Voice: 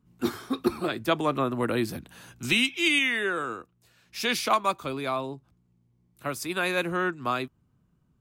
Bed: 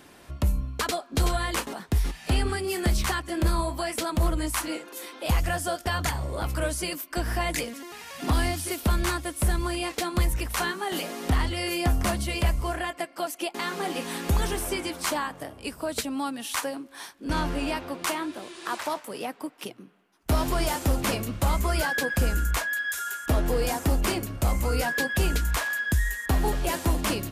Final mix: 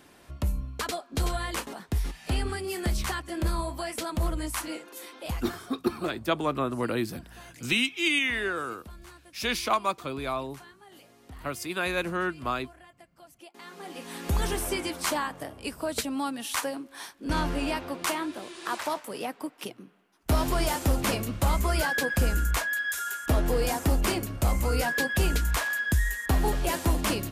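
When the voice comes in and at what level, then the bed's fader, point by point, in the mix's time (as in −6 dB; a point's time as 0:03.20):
5.20 s, −2.0 dB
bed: 0:05.19 −4 dB
0:05.69 −22.5 dB
0:13.24 −22.5 dB
0:14.48 −0.5 dB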